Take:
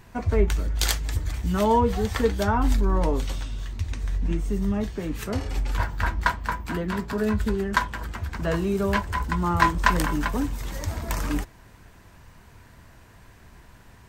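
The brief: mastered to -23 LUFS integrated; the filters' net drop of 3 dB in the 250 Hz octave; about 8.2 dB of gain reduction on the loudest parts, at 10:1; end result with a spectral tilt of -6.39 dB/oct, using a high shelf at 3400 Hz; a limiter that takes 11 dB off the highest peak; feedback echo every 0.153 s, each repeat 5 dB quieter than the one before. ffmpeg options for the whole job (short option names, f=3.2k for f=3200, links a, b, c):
-af "equalizer=f=250:t=o:g=-4,highshelf=f=3.4k:g=-9,acompressor=threshold=-23dB:ratio=10,alimiter=limit=-20.5dB:level=0:latency=1,aecho=1:1:153|306|459|612|765|918|1071:0.562|0.315|0.176|0.0988|0.0553|0.031|0.0173,volume=6dB"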